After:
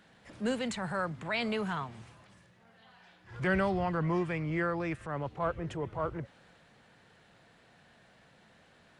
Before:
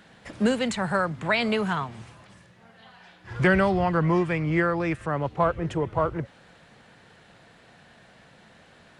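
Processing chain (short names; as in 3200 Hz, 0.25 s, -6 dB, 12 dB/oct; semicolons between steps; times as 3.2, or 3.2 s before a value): transient shaper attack -6 dB, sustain +1 dB; gain -7.5 dB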